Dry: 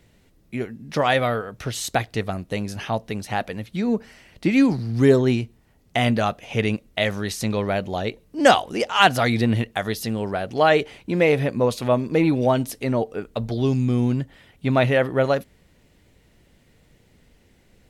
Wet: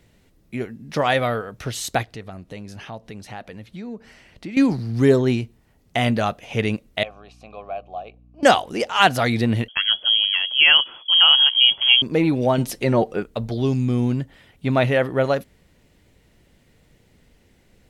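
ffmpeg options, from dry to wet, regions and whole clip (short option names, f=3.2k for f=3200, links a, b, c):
-filter_complex "[0:a]asettb=1/sr,asplit=3[a][b][c];[a]atrim=end=2.034[d];[b]atrim=start=2.03:end=4.57,asetpts=PTS-STARTPTS,afade=t=in:d=0.004:c=qsin,afade=t=out:st=2.536:d=0.004:c=qsin,highshelf=f=10k:g=-9,acompressor=threshold=-39dB:ratio=2:attack=3.2:release=140:knee=1:detection=peak[e];[c]atrim=start=4.566[f];[d][e]acrossfade=d=0.004:c1=hsin:c2=qsin[g];[g][f]acrossfade=d=0.004:c1=qsin:c2=hsin,asettb=1/sr,asplit=3[h][i][j];[h]atrim=end=7.034[k];[i]atrim=start=7.03:end=8.43,asetpts=PTS-STARTPTS,afade=t=in:d=0.004:c=qsin,afade=t=out:st=1.396:d=0.004:c=qsin,asplit=3[l][m][n];[l]bandpass=f=730:t=q:w=8,volume=0dB[o];[m]bandpass=f=1.09k:t=q:w=8,volume=-6dB[p];[n]bandpass=f=2.44k:t=q:w=8,volume=-9dB[q];[o][p][q]amix=inputs=3:normalize=0,aeval=exprs='val(0)+0.00316*(sin(2*PI*60*n/s)+sin(2*PI*2*60*n/s)/2+sin(2*PI*3*60*n/s)/3+sin(2*PI*4*60*n/s)/4+sin(2*PI*5*60*n/s)/5)':c=same[r];[j]atrim=start=8.426[s];[k][r]acrossfade=d=0.004:c1=hsin:c2=qsin[t];[t][s]acrossfade=d=0.004:c1=qsin:c2=hsin,asettb=1/sr,asplit=3[u][v][w];[u]atrim=end=9.684[x];[v]atrim=start=9.68:end=12.02,asetpts=PTS-STARTPTS,afade=t=in:d=0.004:c=qsin,afade=t=out:st=2.336:d=0.004:c=qsin,lowshelf=f=290:g=11,lowpass=f=2.9k:t=q:w=0.5098,lowpass=f=2.9k:t=q:w=0.6013,lowpass=f=2.9k:t=q:w=0.9,lowpass=f=2.9k:t=q:w=2.563,afreqshift=-3400[y];[w]atrim=start=12.016[z];[x][y]acrossfade=d=0.004:c1=hsin:c2=qsin[aa];[aa][z]acrossfade=d=0.004:c1=qsin:c2=hsin,asettb=1/sr,asplit=3[ab][ac][ad];[ab]atrim=end=12.584[ae];[ac]atrim=start=12.58:end=13.23,asetpts=PTS-STARTPTS,afade=t=in:d=0.004:c=qsin,afade=t=out:st=0.646:d=0.004:c=qsin,highshelf=f=10k:g=-6.5,aecho=1:1:5.6:0.37,atrim=end_sample=28665,acontrast=20[af];[ad]atrim=start=13.226[ag];[ae][af]acrossfade=d=0.004:c1=hsin:c2=qsin[ah];[ah][ag]acrossfade=d=0.004:c1=qsin:c2=hsin"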